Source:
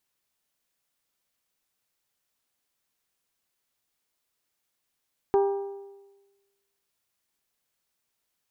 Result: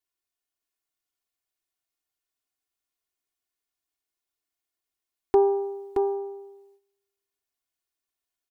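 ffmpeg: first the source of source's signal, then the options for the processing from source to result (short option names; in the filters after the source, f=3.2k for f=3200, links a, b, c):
-f lavfi -i "aevalsrc='0.141*pow(10,-3*t/1.21)*sin(2*PI*397*t)+0.0596*pow(10,-3*t/0.983)*sin(2*PI*794*t)+0.0251*pow(10,-3*t/0.931)*sin(2*PI*952.8*t)+0.0106*pow(10,-3*t/0.87)*sin(2*PI*1191*t)+0.00447*pow(10,-3*t/0.798)*sin(2*PI*1588*t)':d=1.55:s=44100"
-filter_complex "[0:a]agate=range=-12dB:threshold=-59dB:ratio=16:detection=peak,aecho=1:1:2.8:0.84,asplit=2[a][b];[b]aecho=0:1:623:0.562[c];[a][c]amix=inputs=2:normalize=0"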